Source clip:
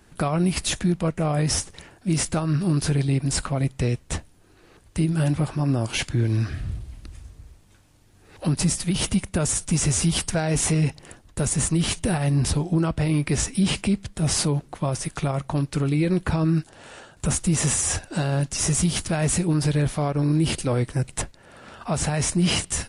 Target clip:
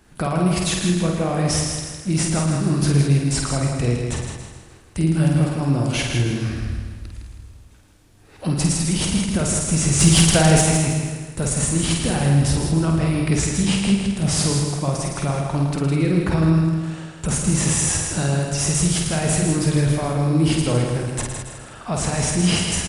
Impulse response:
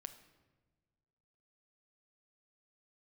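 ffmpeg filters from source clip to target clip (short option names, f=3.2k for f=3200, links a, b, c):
-filter_complex "[0:a]asplit=2[a][b];[b]aecho=0:1:50|112.5|190.6|288.3|410.4:0.631|0.398|0.251|0.158|0.1[c];[a][c]amix=inputs=2:normalize=0,asplit=3[d][e][f];[d]afade=t=out:st=9.99:d=0.02[g];[e]acontrast=77,afade=t=in:st=9.99:d=0.02,afade=t=out:st=10.6:d=0.02[h];[f]afade=t=in:st=10.6:d=0.02[i];[g][h][i]amix=inputs=3:normalize=0,asplit=2[j][k];[k]aecho=0:1:160|320|480|640|800:0.501|0.21|0.0884|0.0371|0.0156[l];[j][l]amix=inputs=2:normalize=0"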